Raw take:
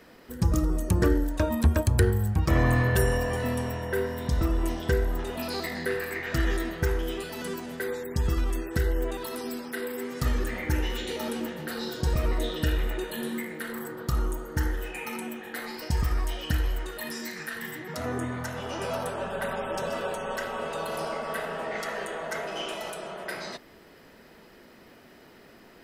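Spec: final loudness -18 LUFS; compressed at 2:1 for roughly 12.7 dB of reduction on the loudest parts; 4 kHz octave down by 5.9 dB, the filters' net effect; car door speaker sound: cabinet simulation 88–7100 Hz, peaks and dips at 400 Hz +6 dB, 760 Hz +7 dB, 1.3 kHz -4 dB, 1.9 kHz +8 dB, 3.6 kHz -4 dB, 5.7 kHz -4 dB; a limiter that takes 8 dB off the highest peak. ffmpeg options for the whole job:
-af "equalizer=f=4000:t=o:g=-6,acompressor=threshold=0.00891:ratio=2,alimiter=level_in=2:limit=0.0631:level=0:latency=1,volume=0.501,highpass=88,equalizer=f=400:t=q:w=4:g=6,equalizer=f=760:t=q:w=4:g=7,equalizer=f=1300:t=q:w=4:g=-4,equalizer=f=1900:t=q:w=4:g=8,equalizer=f=3600:t=q:w=4:g=-4,equalizer=f=5700:t=q:w=4:g=-4,lowpass=f=7100:w=0.5412,lowpass=f=7100:w=1.3066,volume=10.6"

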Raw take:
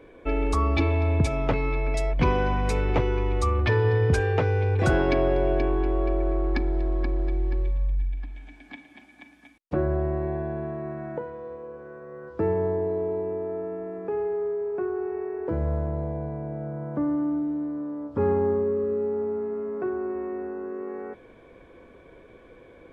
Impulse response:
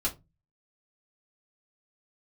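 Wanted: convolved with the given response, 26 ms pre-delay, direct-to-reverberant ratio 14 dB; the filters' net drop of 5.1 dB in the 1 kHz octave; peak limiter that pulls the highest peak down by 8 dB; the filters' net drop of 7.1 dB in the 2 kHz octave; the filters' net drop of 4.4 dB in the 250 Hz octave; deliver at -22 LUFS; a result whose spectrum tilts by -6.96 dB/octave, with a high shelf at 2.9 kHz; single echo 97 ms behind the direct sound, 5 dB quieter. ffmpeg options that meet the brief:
-filter_complex "[0:a]equalizer=f=250:t=o:g=-6,equalizer=f=1000:t=o:g=-4.5,equalizer=f=2000:t=o:g=-5.5,highshelf=f=2900:g=-6,alimiter=limit=0.1:level=0:latency=1,aecho=1:1:97:0.562,asplit=2[s0][s1];[1:a]atrim=start_sample=2205,adelay=26[s2];[s1][s2]afir=irnorm=-1:irlink=0,volume=0.1[s3];[s0][s3]amix=inputs=2:normalize=0,volume=2.51"

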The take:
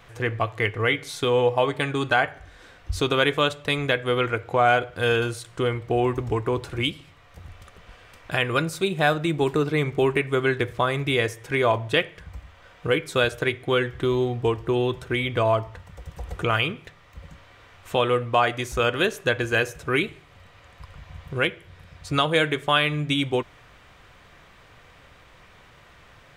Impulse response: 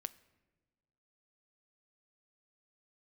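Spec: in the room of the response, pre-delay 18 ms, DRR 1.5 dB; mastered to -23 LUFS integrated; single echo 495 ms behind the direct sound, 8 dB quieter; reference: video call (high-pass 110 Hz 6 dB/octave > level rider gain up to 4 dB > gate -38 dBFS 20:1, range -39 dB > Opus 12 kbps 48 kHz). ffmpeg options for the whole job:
-filter_complex "[0:a]aecho=1:1:495:0.398,asplit=2[s0][s1];[1:a]atrim=start_sample=2205,adelay=18[s2];[s1][s2]afir=irnorm=-1:irlink=0,volume=1.19[s3];[s0][s3]amix=inputs=2:normalize=0,highpass=f=110:p=1,dynaudnorm=m=1.58,agate=range=0.0112:threshold=0.0126:ratio=20,volume=0.841" -ar 48000 -c:a libopus -b:a 12k

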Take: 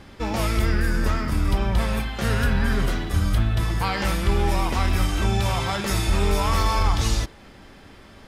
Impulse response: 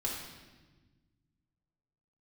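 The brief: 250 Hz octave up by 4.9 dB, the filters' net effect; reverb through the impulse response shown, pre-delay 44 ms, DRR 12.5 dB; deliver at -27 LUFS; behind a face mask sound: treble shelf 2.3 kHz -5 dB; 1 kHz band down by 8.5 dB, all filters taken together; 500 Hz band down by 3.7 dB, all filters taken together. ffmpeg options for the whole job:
-filter_complex "[0:a]equalizer=f=250:t=o:g=8.5,equalizer=f=500:t=o:g=-6.5,equalizer=f=1000:t=o:g=-8.5,asplit=2[s0][s1];[1:a]atrim=start_sample=2205,adelay=44[s2];[s1][s2]afir=irnorm=-1:irlink=0,volume=0.158[s3];[s0][s3]amix=inputs=2:normalize=0,highshelf=f=2300:g=-5,volume=0.631"

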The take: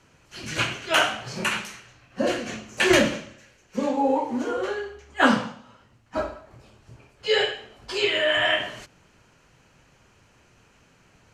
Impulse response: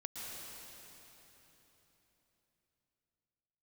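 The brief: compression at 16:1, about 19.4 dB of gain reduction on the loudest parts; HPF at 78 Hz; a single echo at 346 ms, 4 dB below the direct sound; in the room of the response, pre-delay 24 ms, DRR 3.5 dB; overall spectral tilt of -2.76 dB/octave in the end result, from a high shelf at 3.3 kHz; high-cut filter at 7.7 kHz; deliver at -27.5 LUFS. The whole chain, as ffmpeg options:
-filter_complex "[0:a]highpass=78,lowpass=7700,highshelf=f=3300:g=-7.5,acompressor=threshold=0.0224:ratio=16,aecho=1:1:346:0.631,asplit=2[s0][s1];[1:a]atrim=start_sample=2205,adelay=24[s2];[s1][s2]afir=irnorm=-1:irlink=0,volume=0.708[s3];[s0][s3]amix=inputs=2:normalize=0,volume=2.66"

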